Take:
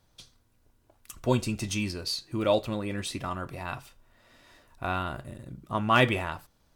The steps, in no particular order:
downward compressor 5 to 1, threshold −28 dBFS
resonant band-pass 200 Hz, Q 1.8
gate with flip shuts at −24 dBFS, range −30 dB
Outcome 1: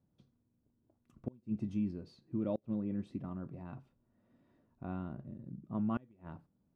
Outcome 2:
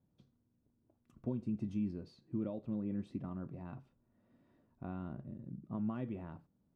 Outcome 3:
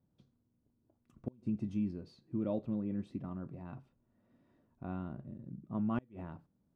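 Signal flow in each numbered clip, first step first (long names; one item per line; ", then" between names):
resonant band-pass, then gate with flip, then downward compressor
downward compressor, then resonant band-pass, then gate with flip
resonant band-pass, then downward compressor, then gate with flip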